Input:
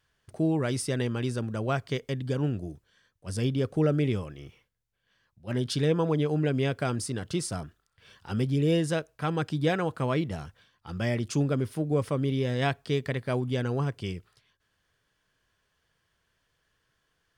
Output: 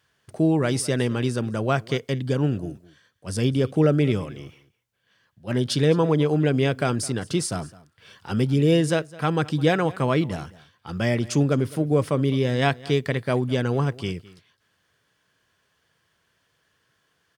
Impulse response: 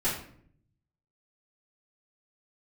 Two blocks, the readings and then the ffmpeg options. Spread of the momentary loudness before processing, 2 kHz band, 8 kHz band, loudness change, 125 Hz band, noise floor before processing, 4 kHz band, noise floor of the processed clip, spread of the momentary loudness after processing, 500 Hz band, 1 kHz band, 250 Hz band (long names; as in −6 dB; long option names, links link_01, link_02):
11 LU, +6.0 dB, +6.0 dB, +5.5 dB, +5.0 dB, −76 dBFS, +6.0 dB, −70 dBFS, 12 LU, +6.0 dB, +6.0 dB, +6.0 dB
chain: -filter_complex "[0:a]highpass=98,asplit=2[link_01][link_02];[link_02]aecho=0:1:210:0.0944[link_03];[link_01][link_03]amix=inputs=2:normalize=0,volume=6dB"